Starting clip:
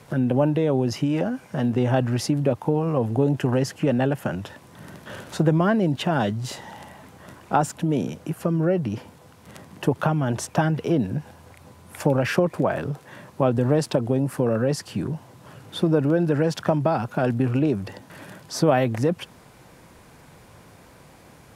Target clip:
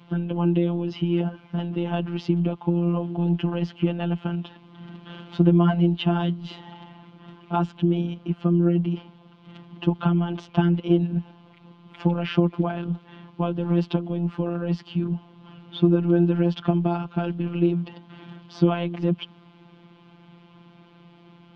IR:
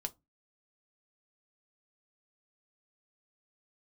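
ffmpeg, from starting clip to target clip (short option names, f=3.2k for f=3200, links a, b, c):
-af "highpass=120,equalizer=f=140:t=q:w=4:g=6,equalizer=f=200:t=q:w=4:g=7,equalizer=f=320:t=q:w=4:g=5,equalizer=f=540:t=q:w=4:g=-9,equalizer=f=1.8k:t=q:w=4:g=-9,equalizer=f=3.1k:t=q:w=4:g=8,lowpass=f=3.7k:w=0.5412,lowpass=f=3.7k:w=1.3066,afftfilt=real='hypot(re,im)*cos(PI*b)':imag='0':win_size=1024:overlap=0.75"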